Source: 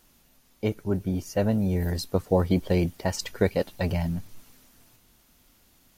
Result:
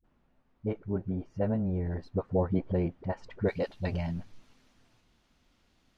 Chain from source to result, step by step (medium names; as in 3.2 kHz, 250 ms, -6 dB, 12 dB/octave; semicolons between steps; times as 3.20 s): low-pass 1.5 kHz 12 dB/octave, from 3.44 s 4.4 kHz; phase dispersion highs, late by 45 ms, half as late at 310 Hz; trim -5.5 dB